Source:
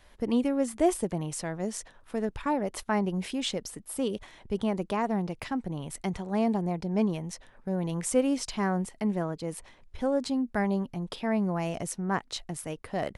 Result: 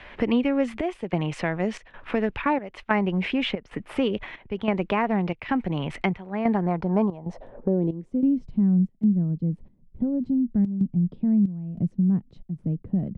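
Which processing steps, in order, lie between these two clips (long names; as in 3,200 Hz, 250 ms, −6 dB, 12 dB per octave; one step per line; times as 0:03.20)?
low-pass filter sweep 2,500 Hz → 190 Hz, 0:06.25–0:08.45
gate pattern ".xxxx..xxxx" 93 BPM −12 dB
multiband upward and downward compressor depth 70%
level +4.5 dB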